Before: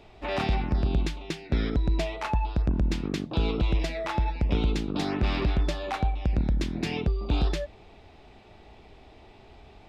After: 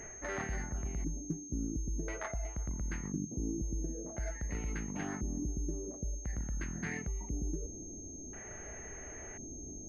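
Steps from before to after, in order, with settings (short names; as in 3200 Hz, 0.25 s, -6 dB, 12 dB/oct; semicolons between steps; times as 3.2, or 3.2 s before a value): reverse; compressor 5:1, threshold -39 dBFS, peak gain reduction 16.5 dB; reverse; LFO low-pass square 0.48 Hz 380–2400 Hz; formant shift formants -4 st; pulse-width modulation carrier 6400 Hz; gain +2 dB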